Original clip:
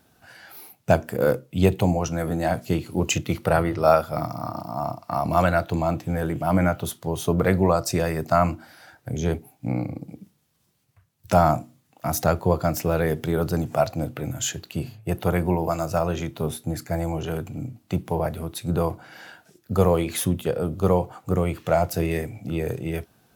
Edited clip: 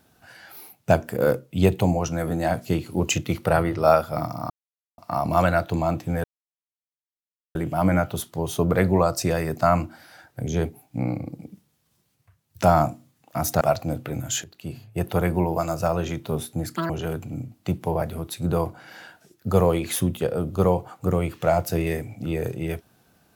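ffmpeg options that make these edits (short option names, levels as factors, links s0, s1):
-filter_complex "[0:a]asplit=8[s0][s1][s2][s3][s4][s5][s6][s7];[s0]atrim=end=4.5,asetpts=PTS-STARTPTS,afade=t=out:st=4.496:d=0.004:c=hsin[s8];[s1]atrim=start=4.5:end=4.98,asetpts=PTS-STARTPTS,volume=0[s9];[s2]atrim=start=4.98:end=6.24,asetpts=PTS-STARTPTS,afade=t=in:d=0.004:c=hsin,afade=t=out:st=1.256:d=0.004:c=hsin,apad=pad_dur=1.31[s10];[s3]atrim=start=6.24:end=12.302,asetpts=PTS-STARTPTS,afade=t=in:d=0.004:c=hsin[s11];[s4]atrim=start=13.718:end=14.55,asetpts=PTS-STARTPTS,afade=t=out:st=0.828:d=0.004:c=hsin:silence=0.199526[s12];[s5]atrim=start=14.55:end=16.874,asetpts=PTS-STARTPTS,afade=t=in:d=0.57:silence=0.199526[s13];[s6]atrim=start=16.87:end=17.14,asetpts=PTS-STARTPTS,asetrate=87318,aresample=44100[s14];[s7]atrim=start=17.136[s15];[s8][s9][s10][s11]concat=n=4:v=0:a=1[s16];[s12][s13]concat=n=2:v=0:a=1[s17];[s16][s17]acrossfade=d=0.004:c1=hsin:c2=hsin[s18];[s18][s14]acrossfade=d=0.004:c1=hsin:c2=hsin[s19];[s19][s15]acrossfade=d=0.004:c1=hsin:c2=hsin"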